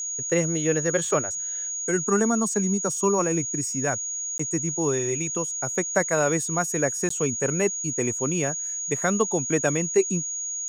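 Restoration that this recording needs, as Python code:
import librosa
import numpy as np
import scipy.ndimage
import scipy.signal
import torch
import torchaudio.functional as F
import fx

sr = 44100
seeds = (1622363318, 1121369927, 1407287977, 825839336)

y = fx.notch(x, sr, hz=6700.0, q=30.0)
y = fx.fix_interpolate(y, sr, at_s=(4.38, 7.09), length_ms=14.0)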